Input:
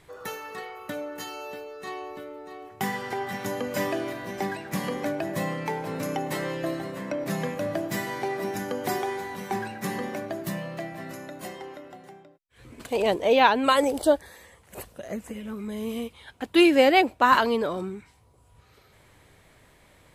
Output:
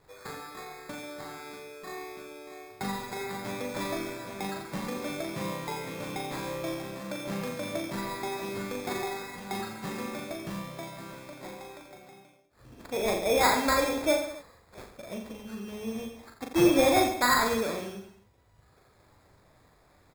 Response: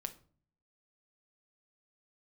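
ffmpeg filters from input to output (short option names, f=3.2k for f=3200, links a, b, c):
-af "acrusher=samples=15:mix=1:aa=0.000001,aecho=1:1:40|86|138.9|199.7|269.7:0.631|0.398|0.251|0.158|0.1,volume=-6.5dB"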